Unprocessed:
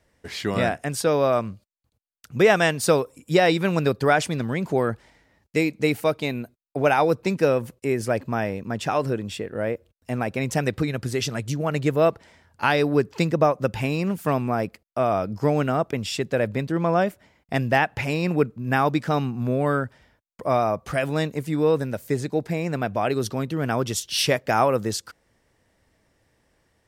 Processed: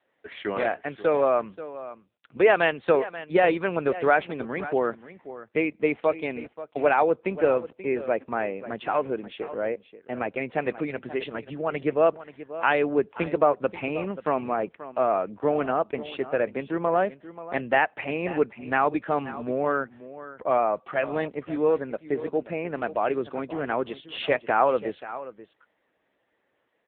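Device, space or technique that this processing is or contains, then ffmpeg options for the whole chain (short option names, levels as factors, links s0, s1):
satellite phone: -filter_complex "[0:a]asettb=1/sr,asplit=3[s0][s1][s2];[s0]atrim=end=2.374[s3];[s1]atrim=start=2.37:end=3.98,asetpts=PTS-STARTPTS,afade=t=in:d=0.004:c=qsin,afade=t=out:st=1.606:d=0.004:c=qsin,adynamicequalizer=threshold=0.01:dfrequency=210:dqfactor=5.5:tfrequency=210:tqfactor=5.5:attack=5:release=100:ratio=0.375:range=3:mode=cutabove:tftype=bell[s4];[s2]atrim=start=3.976[s5];[s3][s4]acrossfade=d=0.004:c1=hsin:c2=qsin[s6];[s6][s5]acrossfade=d=0.004:c1=qsin:c2=hsin,highpass=320,lowpass=3100,aecho=1:1:533:0.188" -ar 8000 -c:a libopencore_amrnb -b:a 6700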